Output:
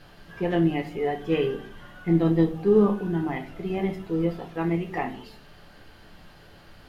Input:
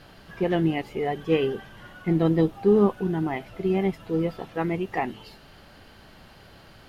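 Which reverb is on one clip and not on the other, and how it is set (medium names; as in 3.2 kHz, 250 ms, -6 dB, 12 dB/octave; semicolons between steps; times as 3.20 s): simulated room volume 31 m³, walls mixed, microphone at 0.34 m; trim -3 dB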